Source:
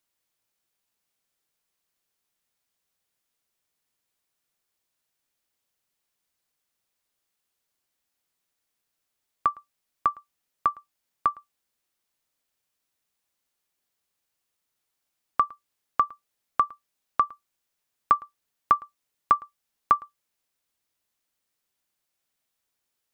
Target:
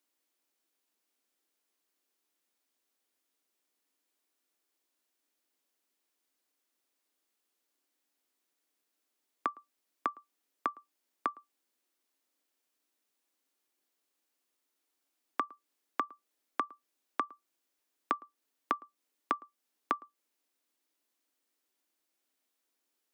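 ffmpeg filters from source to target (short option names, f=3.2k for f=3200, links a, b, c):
-filter_complex "[0:a]lowshelf=f=190:t=q:w=3:g=-13.5,acrossover=split=150|570[a][b][c];[c]acompressor=threshold=-30dB:ratio=6[d];[a][b][d]amix=inputs=3:normalize=0,volume=-2dB"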